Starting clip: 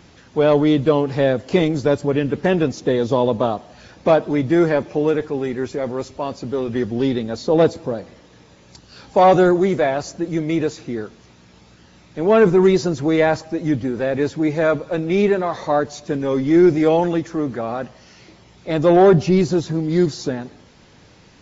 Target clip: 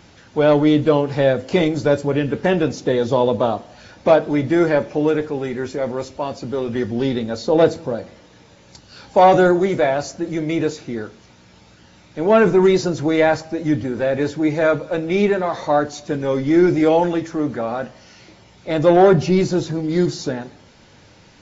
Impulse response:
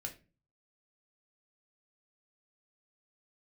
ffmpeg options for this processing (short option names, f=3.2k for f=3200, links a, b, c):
-filter_complex "[0:a]asplit=2[a][b];[1:a]atrim=start_sample=2205,lowshelf=f=190:g=-10[c];[b][c]afir=irnorm=-1:irlink=0,volume=-1dB[d];[a][d]amix=inputs=2:normalize=0,volume=-2.5dB"